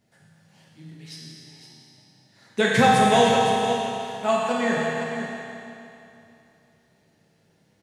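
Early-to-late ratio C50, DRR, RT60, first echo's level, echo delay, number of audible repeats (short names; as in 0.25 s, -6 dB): -2.5 dB, -5.5 dB, 2.8 s, -8.5 dB, 0.512 s, 1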